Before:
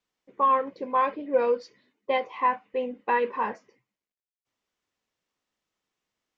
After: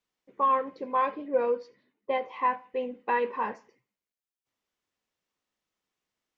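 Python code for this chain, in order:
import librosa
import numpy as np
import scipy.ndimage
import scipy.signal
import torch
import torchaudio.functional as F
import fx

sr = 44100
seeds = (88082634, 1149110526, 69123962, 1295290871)

y = fx.lowpass(x, sr, hz=2100.0, slope=6, at=(1.28, 2.28))
y = fx.echo_feedback(y, sr, ms=83, feedback_pct=36, wet_db=-23.0)
y = y * librosa.db_to_amplitude(-2.5)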